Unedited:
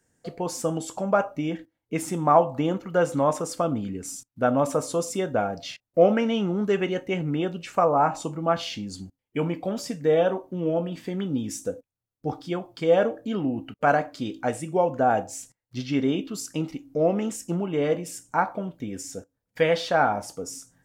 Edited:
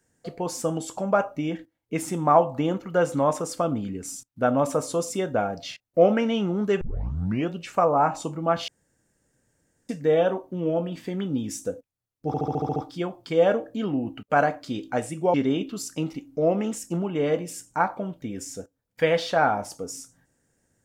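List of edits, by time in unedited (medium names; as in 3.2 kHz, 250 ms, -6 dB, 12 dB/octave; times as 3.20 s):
6.81 s: tape start 0.70 s
8.68–9.89 s: room tone
12.27 s: stutter 0.07 s, 8 plays
14.85–15.92 s: delete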